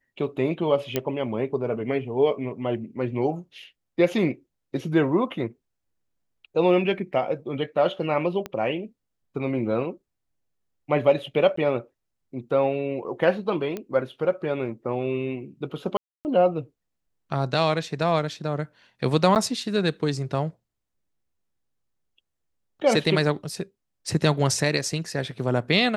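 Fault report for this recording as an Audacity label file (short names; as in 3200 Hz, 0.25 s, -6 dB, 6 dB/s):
0.960000	0.960000	pop -9 dBFS
8.460000	8.460000	pop -17 dBFS
11.560000	11.570000	gap 14 ms
13.770000	13.770000	pop -18 dBFS
15.970000	16.250000	gap 0.279 s
19.350000	19.360000	gap 9 ms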